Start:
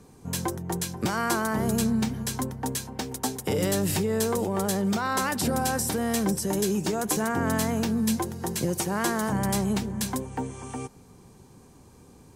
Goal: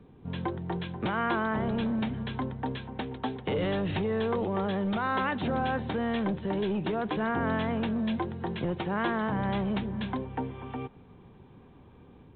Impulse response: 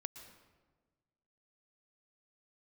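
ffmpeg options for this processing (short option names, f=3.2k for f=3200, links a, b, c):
-filter_complex "[0:a]acrossover=split=490[a][b];[a]aeval=exprs='0.158*(cos(1*acos(clip(val(0)/0.158,-1,1)))-cos(1*PI/2))+0.0282*(cos(5*acos(clip(val(0)/0.158,-1,1)))-cos(5*PI/2))':c=same[c];[b]dynaudnorm=f=260:g=3:m=5dB[d];[c][d]amix=inputs=2:normalize=0,volume=-6.5dB" -ar 8000 -c:a pcm_mulaw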